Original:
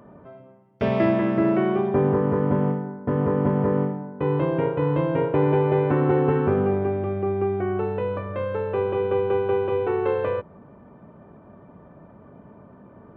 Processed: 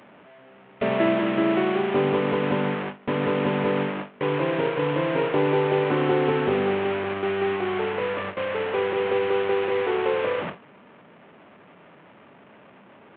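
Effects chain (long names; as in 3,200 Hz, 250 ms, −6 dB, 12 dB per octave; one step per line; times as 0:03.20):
linear delta modulator 16 kbit/s, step −21.5 dBFS
Bessel high-pass filter 230 Hz, order 2
noise gate with hold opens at −20 dBFS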